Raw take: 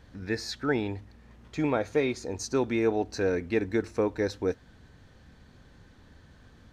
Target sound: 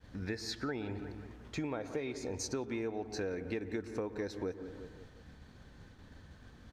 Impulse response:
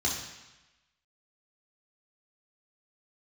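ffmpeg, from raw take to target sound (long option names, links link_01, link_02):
-filter_complex "[0:a]acontrast=56,asplit=2[link_01][link_02];[link_02]adelay=177,lowpass=frequency=3000:poles=1,volume=-17dB,asplit=2[link_03][link_04];[link_04]adelay=177,lowpass=frequency=3000:poles=1,volume=0.51,asplit=2[link_05][link_06];[link_06]adelay=177,lowpass=frequency=3000:poles=1,volume=0.51,asplit=2[link_07][link_08];[link_08]adelay=177,lowpass=frequency=3000:poles=1,volume=0.51[link_09];[link_03][link_05][link_07][link_09]amix=inputs=4:normalize=0[link_10];[link_01][link_10]amix=inputs=2:normalize=0,agate=range=-33dB:threshold=-45dB:ratio=3:detection=peak,asplit=2[link_11][link_12];[1:a]atrim=start_sample=2205,lowpass=2200,adelay=114[link_13];[link_12][link_13]afir=irnorm=-1:irlink=0,volume=-24dB[link_14];[link_11][link_14]amix=inputs=2:normalize=0,acompressor=threshold=-29dB:ratio=6,volume=-6dB"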